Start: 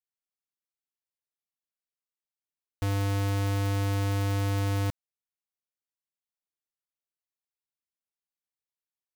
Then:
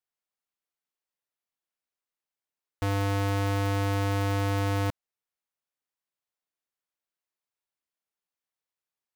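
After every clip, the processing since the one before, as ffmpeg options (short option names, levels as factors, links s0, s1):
-af "equalizer=f=930:w=0.31:g=6.5,volume=0.841"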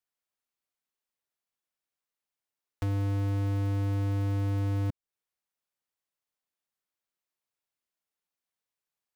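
-filter_complex "[0:a]acrossover=split=340[s0][s1];[s1]acompressor=threshold=0.00708:ratio=5[s2];[s0][s2]amix=inputs=2:normalize=0"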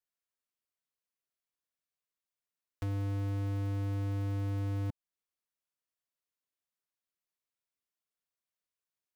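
-af "asuperstop=centerf=820:order=4:qfactor=7.1,volume=0.562"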